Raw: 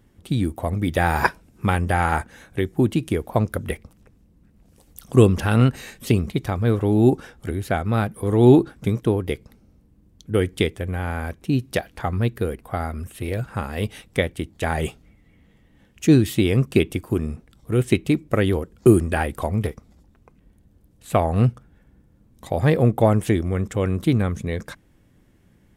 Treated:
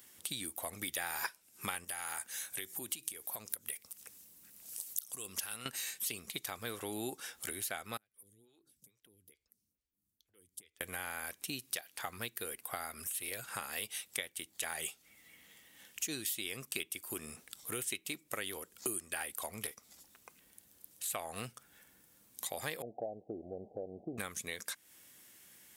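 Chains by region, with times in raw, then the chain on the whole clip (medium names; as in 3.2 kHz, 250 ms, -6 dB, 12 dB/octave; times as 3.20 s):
1.84–5.66 s: treble shelf 4.8 kHz +8 dB + compression 4:1, threshold -27 dBFS
7.97–10.81 s: amplifier tone stack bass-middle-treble 10-0-1 + compression 4:1, threshold -48 dBFS + lamp-driven phase shifter 2.3 Hz
22.82–24.18 s: zero-crossing glitches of -16.5 dBFS + steep low-pass 760 Hz 96 dB/octave + bass shelf 320 Hz -10.5 dB
whole clip: differentiator; compression 4:1, threshold -54 dBFS; trim +15 dB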